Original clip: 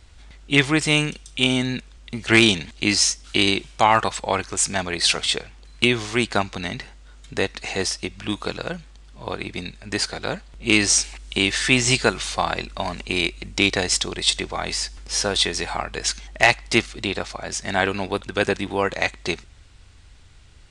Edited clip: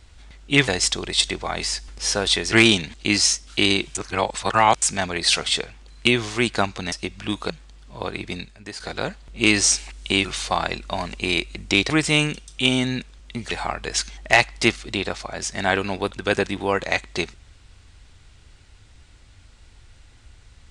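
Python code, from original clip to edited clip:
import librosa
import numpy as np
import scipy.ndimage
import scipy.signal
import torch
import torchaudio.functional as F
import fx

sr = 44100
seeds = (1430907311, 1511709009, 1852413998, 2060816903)

y = fx.edit(x, sr, fx.swap(start_s=0.68, length_s=1.61, other_s=13.77, other_length_s=1.84),
    fx.reverse_span(start_s=3.72, length_s=0.87),
    fx.cut(start_s=6.69, length_s=1.23),
    fx.cut(start_s=8.5, length_s=0.26),
    fx.fade_out_to(start_s=9.65, length_s=0.41, curve='qua', floor_db=-12.5),
    fx.cut(start_s=11.51, length_s=0.61), tone=tone)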